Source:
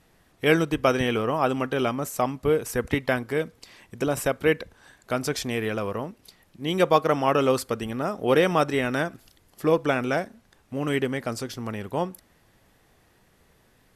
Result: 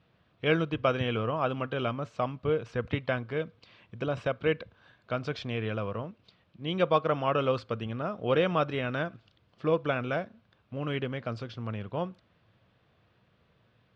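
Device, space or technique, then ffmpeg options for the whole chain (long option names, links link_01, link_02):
guitar cabinet: -af "highpass=82,equalizer=frequency=110:width_type=q:width=4:gain=6,equalizer=frequency=270:width_type=q:width=4:gain=-6,equalizer=frequency=390:width_type=q:width=4:gain=-6,equalizer=frequency=830:width_type=q:width=4:gain=-7,equalizer=frequency=1900:width_type=q:width=4:gain=-8,lowpass=frequency=3700:width=0.5412,lowpass=frequency=3700:width=1.3066,volume=-3dB"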